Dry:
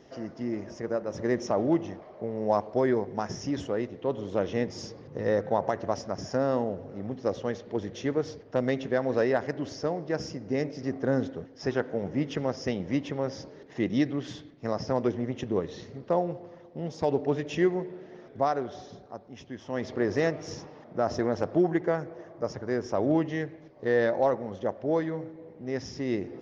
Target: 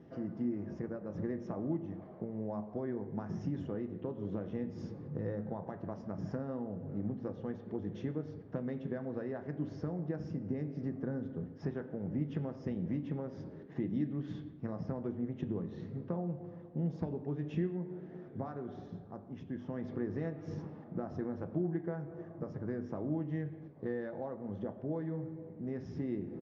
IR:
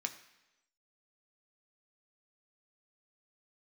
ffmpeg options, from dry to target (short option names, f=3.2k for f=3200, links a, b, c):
-filter_complex "[0:a]acompressor=threshold=-34dB:ratio=4,firequalizer=gain_entry='entry(220,0);entry(490,-11);entry(5200,-28)':delay=0.05:min_phase=1,asplit=2[a][b];[1:a]atrim=start_sample=2205,atrim=end_sample=6615,asetrate=29106,aresample=44100[c];[b][c]afir=irnorm=-1:irlink=0,volume=4dB[d];[a][d]amix=inputs=2:normalize=0,volume=-3dB"